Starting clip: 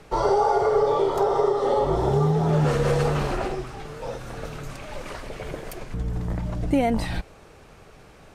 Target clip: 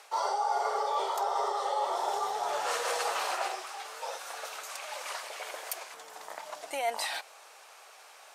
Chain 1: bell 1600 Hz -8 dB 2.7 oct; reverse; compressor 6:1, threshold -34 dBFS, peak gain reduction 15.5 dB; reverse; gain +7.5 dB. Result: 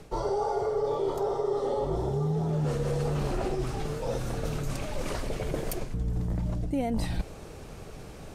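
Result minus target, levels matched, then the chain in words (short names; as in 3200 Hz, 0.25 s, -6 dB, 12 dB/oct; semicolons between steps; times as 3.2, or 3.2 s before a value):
1000 Hz band -8.0 dB
HPF 770 Hz 24 dB/oct; bell 1600 Hz -8 dB 2.7 oct; reverse; compressor 6:1, threshold -34 dBFS, peak gain reduction 8 dB; reverse; gain +7.5 dB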